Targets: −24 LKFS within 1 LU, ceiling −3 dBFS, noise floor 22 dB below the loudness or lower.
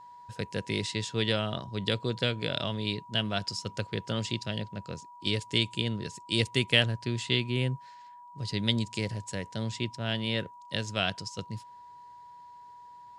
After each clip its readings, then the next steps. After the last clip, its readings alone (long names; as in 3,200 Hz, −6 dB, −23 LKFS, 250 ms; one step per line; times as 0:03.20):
interfering tone 970 Hz; level of the tone −47 dBFS; integrated loudness −31.0 LKFS; sample peak −6.5 dBFS; target loudness −24.0 LKFS
→ notch filter 970 Hz, Q 30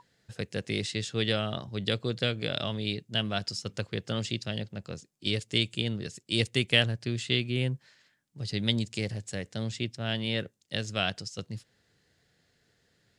interfering tone none found; integrated loudness −31.0 LKFS; sample peak −6.5 dBFS; target loudness −24.0 LKFS
→ level +7 dB
brickwall limiter −3 dBFS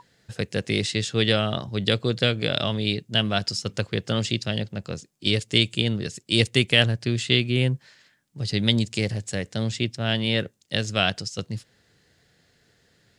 integrated loudness −24.0 LKFS; sample peak −3.0 dBFS; background noise floor −64 dBFS